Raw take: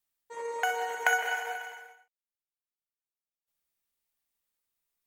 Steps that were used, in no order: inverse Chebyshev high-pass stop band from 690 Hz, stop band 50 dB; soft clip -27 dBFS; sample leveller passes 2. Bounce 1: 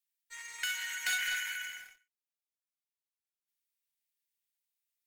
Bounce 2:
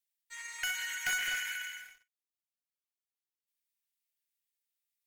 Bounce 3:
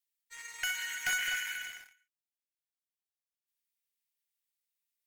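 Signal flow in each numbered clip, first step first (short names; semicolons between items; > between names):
soft clip > inverse Chebyshev high-pass > sample leveller; inverse Chebyshev high-pass > soft clip > sample leveller; inverse Chebyshev high-pass > sample leveller > soft clip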